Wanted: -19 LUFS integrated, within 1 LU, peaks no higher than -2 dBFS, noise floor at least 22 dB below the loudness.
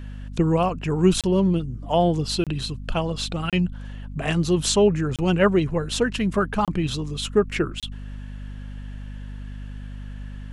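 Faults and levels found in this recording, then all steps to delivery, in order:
dropouts 6; longest dropout 27 ms; hum 50 Hz; highest harmonic 250 Hz; hum level -33 dBFS; loudness -23.0 LUFS; peak level -6.5 dBFS; loudness target -19.0 LUFS
-> interpolate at 1.21/2.44/3.50/5.16/6.65/7.80 s, 27 ms; de-hum 50 Hz, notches 5; trim +4 dB

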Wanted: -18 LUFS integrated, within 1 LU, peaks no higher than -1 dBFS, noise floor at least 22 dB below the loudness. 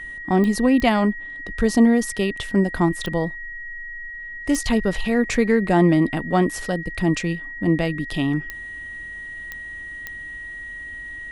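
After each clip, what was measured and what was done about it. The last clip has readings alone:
clicks found 7; steady tone 1.9 kHz; tone level -32 dBFS; loudness -21.0 LUFS; peak level -4.5 dBFS; loudness target -18.0 LUFS
-> de-click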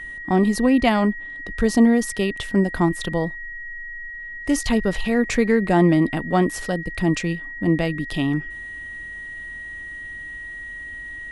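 clicks found 0; steady tone 1.9 kHz; tone level -32 dBFS
-> band-stop 1.9 kHz, Q 30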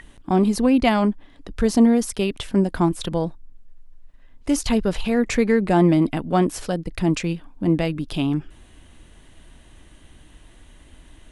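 steady tone not found; loudness -21.0 LUFS; peak level -4.5 dBFS; loudness target -18.0 LUFS
-> trim +3 dB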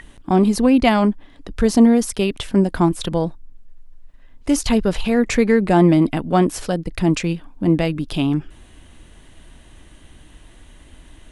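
loudness -18.0 LUFS; peak level -1.5 dBFS; noise floor -47 dBFS

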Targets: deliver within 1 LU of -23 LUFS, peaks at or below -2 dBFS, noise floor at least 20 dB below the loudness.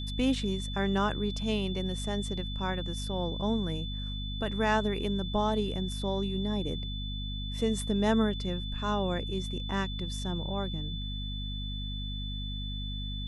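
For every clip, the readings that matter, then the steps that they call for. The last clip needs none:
hum 50 Hz; highest harmonic 250 Hz; hum level -34 dBFS; steady tone 3.5 kHz; tone level -40 dBFS; loudness -32.0 LUFS; peak level -13.5 dBFS; loudness target -23.0 LUFS
-> de-hum 50 Hz, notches 5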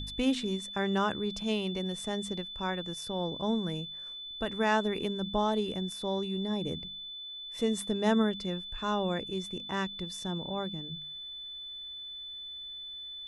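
hum not found; steady tone 3.5 kHz; tone level -40 dBFS
-> band-stop 3.5 kHz, Q 30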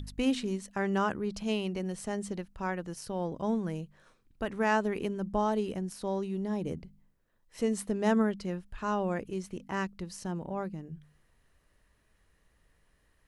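steady tone not found; loudness -33.0 LUFS; peak level -13.5 dBFS; loudness target -23.0 LUFS
-> trim +10 dB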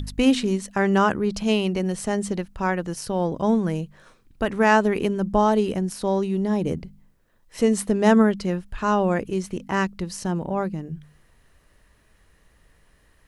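loudness -23.0 LUFS; peak level -3.5 dBFS; noise floor -60 dBFS

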